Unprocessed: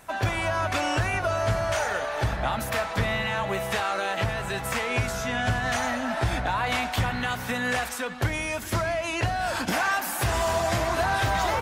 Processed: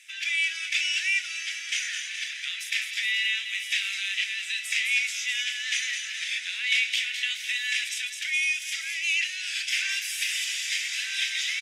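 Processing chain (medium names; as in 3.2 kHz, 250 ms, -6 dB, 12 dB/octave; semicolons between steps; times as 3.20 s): steep high-pass 2.1 kHz 48 dB/octave; distance through air 77 m; band-stop 4.3 kHz, Q 6.9; doubling 30 ms -13 dB; feedback echo behind a high-pass 209 ms, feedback 51%, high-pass 4.3 kHz, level -4.5 dB; trim +9 dB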